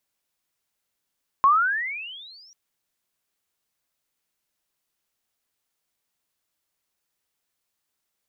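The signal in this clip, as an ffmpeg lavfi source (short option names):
-f lavfi -i "aevalsrc='pow(10,(-12-37.5*t/1.09)/20)*sin(2*PI*1060*1.09/(29.5*log(2)/12)*(exp(29.5*log(2)/12*t/1.09)-1))':d=1.09:s=44100"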